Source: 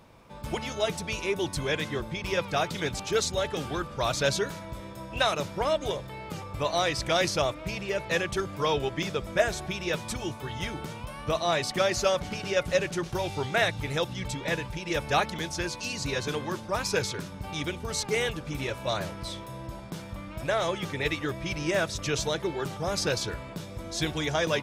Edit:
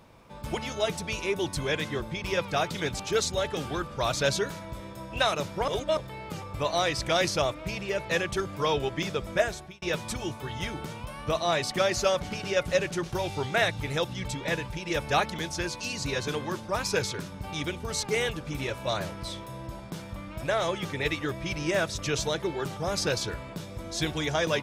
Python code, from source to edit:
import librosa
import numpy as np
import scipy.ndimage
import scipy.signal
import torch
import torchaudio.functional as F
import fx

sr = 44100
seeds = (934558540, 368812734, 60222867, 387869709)

y = fx.edit(x, sr, fx.reverse_span(start_s=5.68, length_s=0.29),
    fx.fade_out_span(start_s=9.36, length_s=0.46), tone=tone)